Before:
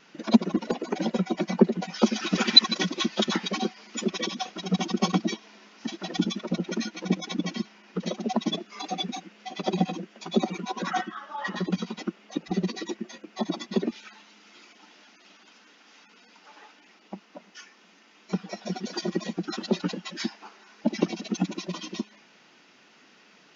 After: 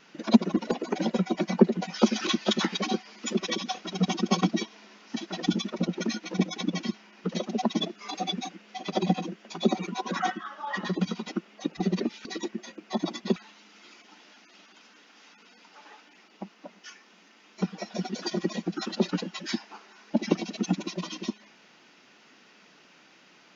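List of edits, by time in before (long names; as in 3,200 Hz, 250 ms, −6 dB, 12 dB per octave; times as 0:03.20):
0:02.27–0:02.98: remove
0:13.82–0:14.07: move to 0:12.71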